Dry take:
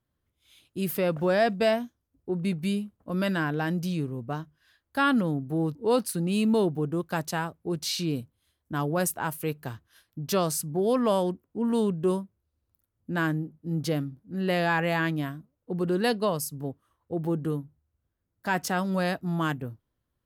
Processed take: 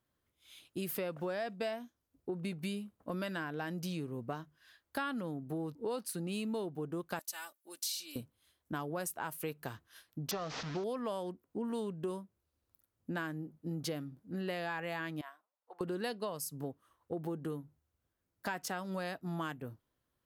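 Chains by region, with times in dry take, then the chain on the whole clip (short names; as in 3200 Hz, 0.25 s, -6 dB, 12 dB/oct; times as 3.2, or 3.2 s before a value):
7.19–8.16 differentiator + comb 3.4 ms, depth 90%
10.31–10.84 delta modulation 32 kbps, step -35.5 dBFS + core saturation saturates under 450 Hz
15.21–15.81 ladder high-pass 690 Hz, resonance 40% + high shelf 3900 Hz -6.5 dB
whole clip: low shelf 190 Hz -10 dB; compressor 6:1, threshold -37 dBFS; gain +1.5 dB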